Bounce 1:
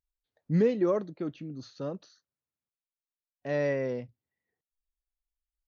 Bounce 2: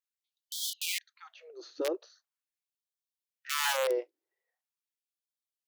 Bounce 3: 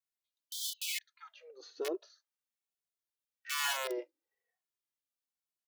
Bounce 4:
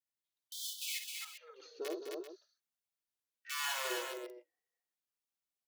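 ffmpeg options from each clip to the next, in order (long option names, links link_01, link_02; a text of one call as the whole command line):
ffmpeg -i in.wav -af "aeval=exprs='(mod(15.8*val(0)+1,2)-1)/15.8':channel_layout=same,equalizer=frequency=270:width=0.94:gain=13.5,afftfilt=real='re*gte(b*sr/1024,300*pow(3100/300,0.5+0.5*sin(2*PI*0.42*pts/sr)))':imag='im*gte(b*sr/1024,300*pow(3100/300,0.5+0.5*sin(2*PI*0.42*pts/sr)))':win_size=1024:overlap=0.75" out.wav
ffmpeg -i in.wav -filter_complex "[0:a]asplit=2[link_01][link_02];[link_02]adelay=2.3,afreqshift=-1.1[link_03];[link_01][link_03]amix=inputs=2:normalize=1" out.wav
ffmpeg -i in.wav -af "aecho=1:1:53|65|206|262|391:0.422|0.126|0.335|0.668|0.266,volume=-4.5dB" out.wav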